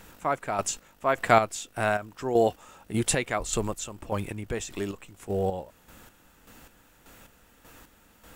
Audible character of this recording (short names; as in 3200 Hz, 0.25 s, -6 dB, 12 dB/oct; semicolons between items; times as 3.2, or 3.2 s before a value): chopped level 1.7 Hz, depth 60%, duty 35%